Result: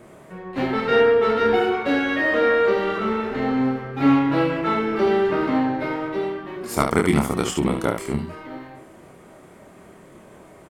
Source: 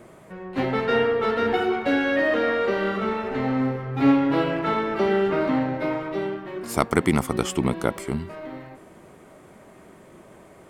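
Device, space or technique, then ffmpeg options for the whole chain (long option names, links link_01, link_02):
slapback doubling: -filter_complex "[0:a]asplit=3[link_01][link_02][link_03];[link_02]adelay=28,volume=-4dB[link_04];[link_03]adelay=73,volume=-6.5dB[link_05];[link_01][link_04][link_05]amix=inputs=3:normalize=0"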